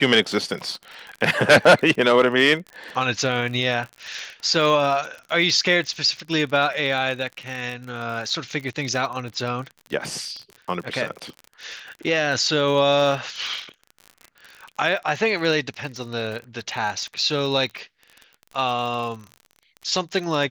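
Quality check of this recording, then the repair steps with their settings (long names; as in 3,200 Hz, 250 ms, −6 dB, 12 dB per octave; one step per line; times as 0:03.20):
surface crackle 46 per second −30 dBFS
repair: click removal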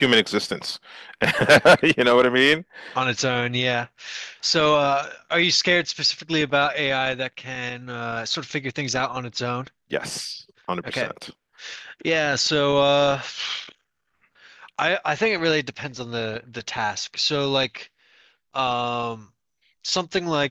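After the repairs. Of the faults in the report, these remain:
none of them is left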